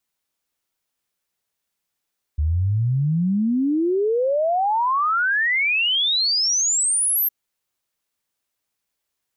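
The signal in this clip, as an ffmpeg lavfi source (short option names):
-f lavfi -i "aevalsrc='0.141*clip(min(t,4.91-t)/0.01,0,1)*sin(2*PI*72*4.91/log(13000/72)*(exp(log(13000/72)*t/4.91)-1))':d=4.91:s=44100"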